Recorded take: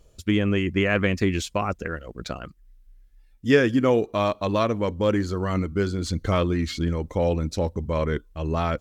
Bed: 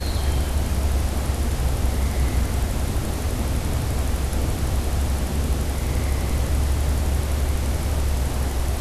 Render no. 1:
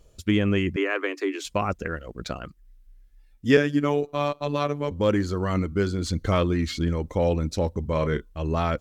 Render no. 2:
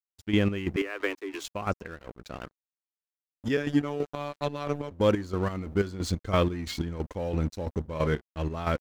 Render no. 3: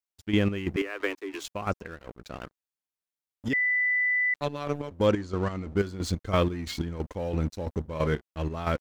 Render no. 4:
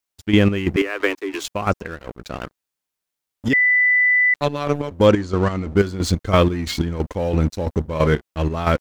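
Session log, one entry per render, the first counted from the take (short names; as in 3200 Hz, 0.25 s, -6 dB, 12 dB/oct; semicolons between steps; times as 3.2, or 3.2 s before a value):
0.76–1.45 rippled Chebyshev high-pass 280 Hz, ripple 6 dB; 3.57–4.91 robotiser 145 Hz; 7.89–8.3 doubler 32 ms -10.5 dB
crossover distortion -41 dBFS; chopper 3 Hz, depth 65%, duty 45%
3.53–4.34 bleep 1990 Hz -22 dBFS; 5.06–5.77 LPF 8500 Hz 24 dB/oct
gain +9.5 dB; limiter -2 dBFS, peak gain reduction 1 dB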